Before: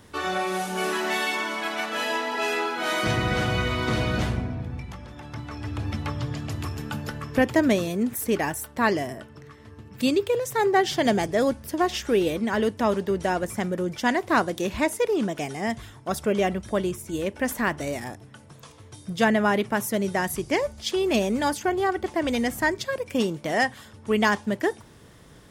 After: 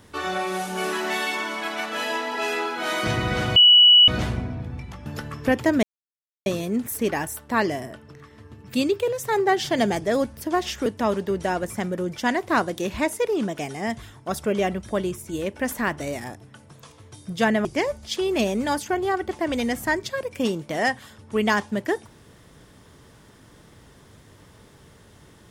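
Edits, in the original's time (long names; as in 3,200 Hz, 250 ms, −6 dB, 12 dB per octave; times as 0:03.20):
0:03.56–0:04.08: beep over 2,940 Hz −9 dBFS
0:05.06–0:06.96: remove
0:07.73: splice in silence 0.63 s
0:12.13–0:12.66: remove
0:19.45–0:20.40: remove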